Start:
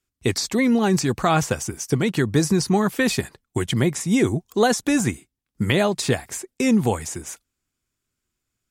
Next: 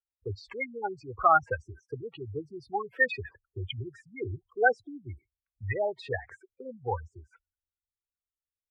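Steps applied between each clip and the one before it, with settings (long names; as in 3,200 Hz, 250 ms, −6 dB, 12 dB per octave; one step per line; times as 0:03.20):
gate on every frequency bin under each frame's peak −10 dB strong
drawn EQ curve 100 Hz 0 dB, 190 Hz −27 dB, 480 Hz −1 dB, 710 Hz 0 dB, 1,500 Hz +11 dB, 3,900 Hz −7 dB, 6,300 Hz −29 dB
multiband upward and downward expander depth 40%
level −6.5 dB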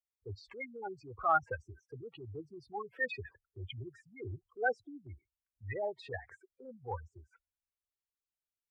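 transient designer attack −6 dB, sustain −1 dB
level −5.5 dB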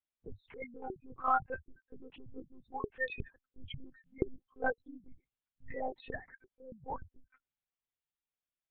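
one-pitch LPC vocoder at 8 kHz 260 Hz
level −1 dB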